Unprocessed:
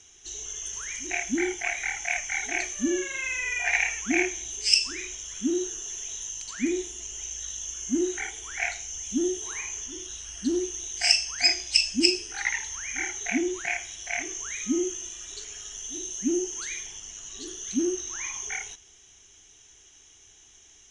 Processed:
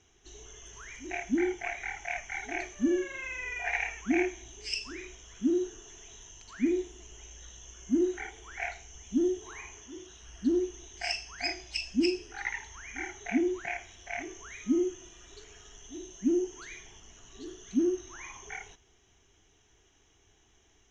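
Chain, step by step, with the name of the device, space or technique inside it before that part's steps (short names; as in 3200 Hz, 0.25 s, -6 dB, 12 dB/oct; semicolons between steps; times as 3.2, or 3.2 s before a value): through cloth (LPF 6500 Hz 12 dB/oct; high shelf 2300 Hz -15.5 dB); 9.75–10.21 HPF 110 Hz 6 dB/oct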